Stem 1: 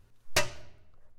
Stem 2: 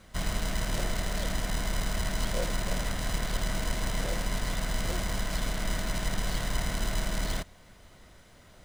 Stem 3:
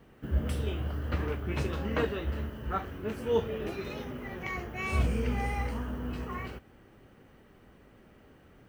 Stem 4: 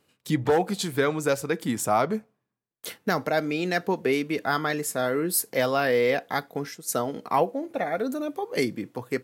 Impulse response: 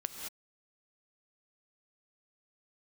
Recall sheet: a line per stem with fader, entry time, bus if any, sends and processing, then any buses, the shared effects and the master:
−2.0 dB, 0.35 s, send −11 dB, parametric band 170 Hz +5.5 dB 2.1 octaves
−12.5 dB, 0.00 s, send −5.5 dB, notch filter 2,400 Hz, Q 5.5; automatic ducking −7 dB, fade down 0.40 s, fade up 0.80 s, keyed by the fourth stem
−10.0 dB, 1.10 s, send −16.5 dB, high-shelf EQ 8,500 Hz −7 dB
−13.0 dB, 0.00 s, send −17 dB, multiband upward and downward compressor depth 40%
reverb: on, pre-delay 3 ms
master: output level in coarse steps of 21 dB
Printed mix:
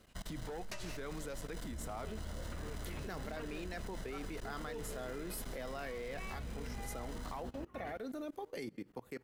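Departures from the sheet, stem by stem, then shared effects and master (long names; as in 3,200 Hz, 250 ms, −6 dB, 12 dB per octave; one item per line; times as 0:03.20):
stem 1: missing parametric band 170 Hz +5.5 dB 2.1 octaves
stem 3: entry 1.10 s → 1.40 s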